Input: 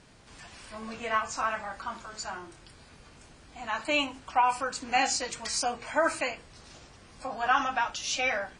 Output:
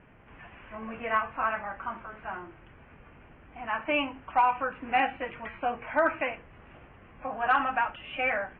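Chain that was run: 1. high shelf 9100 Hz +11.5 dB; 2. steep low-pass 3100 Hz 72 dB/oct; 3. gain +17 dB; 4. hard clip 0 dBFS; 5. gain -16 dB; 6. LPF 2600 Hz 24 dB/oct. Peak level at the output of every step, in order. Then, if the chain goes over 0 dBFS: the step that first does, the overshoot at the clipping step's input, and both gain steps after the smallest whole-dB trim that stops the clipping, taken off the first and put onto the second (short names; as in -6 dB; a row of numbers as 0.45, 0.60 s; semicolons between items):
-11.0, -11.0, +6.0, 0.0, -16.0, -14.5 dBFS; step 3, 6.0 dB; step 3 +11 dB, step 5 -10 dB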